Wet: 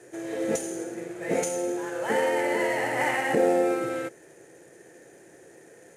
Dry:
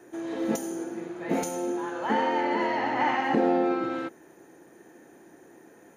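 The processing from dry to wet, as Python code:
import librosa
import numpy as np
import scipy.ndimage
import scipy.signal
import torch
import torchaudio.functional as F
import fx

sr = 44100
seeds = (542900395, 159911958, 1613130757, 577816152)

y = fx.cvsd(x, sr, bps=64000)
y = fx.graphic_eq_10(y, sr, hz=(125, 250, 500, 1000, 2000, 4000, 8000), db=(8, -8, 10, -7, 7, -3, 9))
y = F.gain(torch.from_numpy(y), -1.5).numpy()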